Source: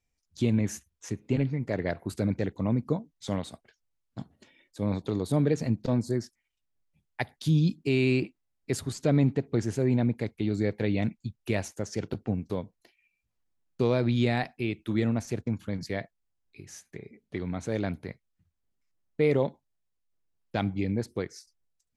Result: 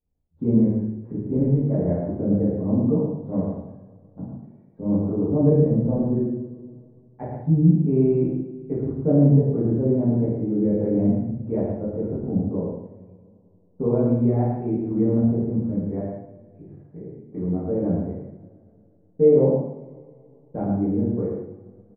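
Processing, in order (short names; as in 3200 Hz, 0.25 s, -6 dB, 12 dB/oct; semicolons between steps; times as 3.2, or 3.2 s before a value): Bessel low-pass 570 Hz, order 4; echo 0.111 s -6 dB; two-slope reverb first 0.73 s, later 2.9 s, from -21 dB, DRR -9 dB; gain -2 dB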